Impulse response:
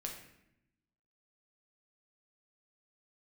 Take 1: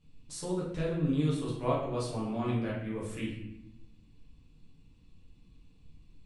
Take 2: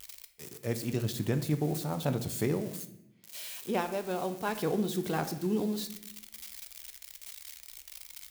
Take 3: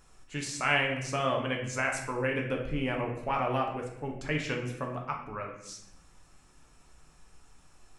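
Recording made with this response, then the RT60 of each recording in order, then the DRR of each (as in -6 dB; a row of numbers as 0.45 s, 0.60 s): 3; 0.80 s, 0.80 s, 0.80 s; -7.5 dB, 8.5 dB, 0.0 dB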